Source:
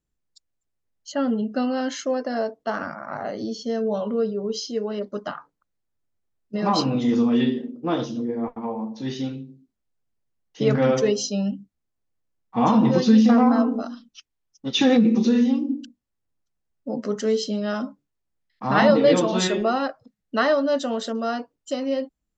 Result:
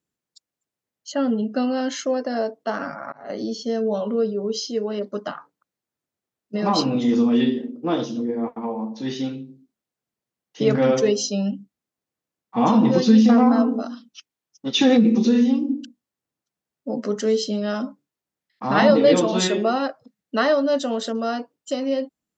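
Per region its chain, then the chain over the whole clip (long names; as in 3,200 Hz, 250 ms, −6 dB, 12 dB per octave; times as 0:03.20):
0:02.79–0:03.30: high-pass filter 46 Hz + volume swells 500 ms + comb filter 7.2 ms, depth 43%
whole clip: high-pass filter 160 Hz 12 dB per octave; dynamic equaliser 1,300 Hz, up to −3 dB, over −33 dBFS, Q 0.72; level +2.5 dB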